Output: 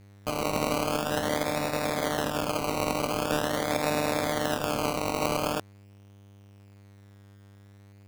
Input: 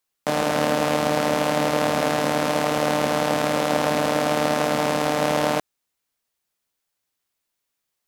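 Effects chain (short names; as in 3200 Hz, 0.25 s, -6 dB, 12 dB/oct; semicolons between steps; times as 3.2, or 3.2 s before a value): buzz 100 Hz, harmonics 31, -41 dBFS -8 dB/oct; decimation with a swept rate 20×, swing 60% 0.44 Hz; upward expander 1.5:1, over -30 dBFS; gain -5.5 dB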